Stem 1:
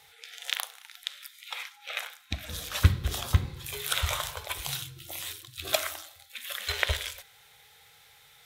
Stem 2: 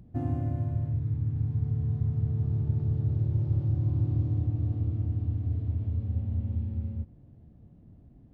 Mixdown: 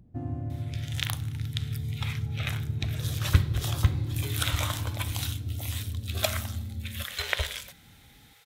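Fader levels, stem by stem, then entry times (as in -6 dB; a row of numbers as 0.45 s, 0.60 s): -1.0 dB, -4.0 dB; 0.50 s, 0.00 s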